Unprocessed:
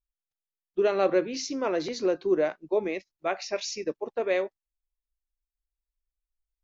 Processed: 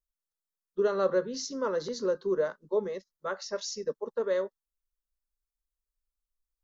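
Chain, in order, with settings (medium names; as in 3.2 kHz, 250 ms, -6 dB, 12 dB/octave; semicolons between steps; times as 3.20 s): static phaser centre 480 Hz, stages 8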